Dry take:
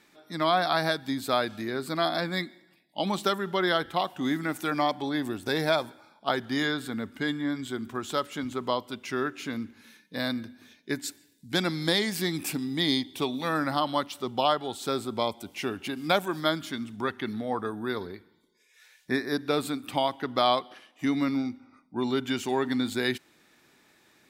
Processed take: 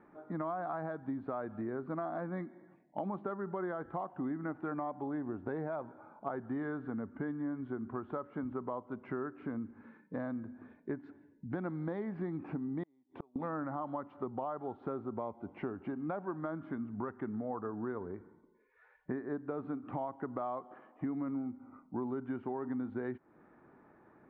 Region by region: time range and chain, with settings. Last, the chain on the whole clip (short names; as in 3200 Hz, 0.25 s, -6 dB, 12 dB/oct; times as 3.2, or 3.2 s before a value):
12.83–13.36 HPF 250 Hz 6 dB/oct + flipped gate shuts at -25 dBFS, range -38 dB
whole clip: LPF 1300 Hz 24 dB/oct; limiter -19 dBFS; compressor 4:1, threshold -41 dBFS; gain +4 dB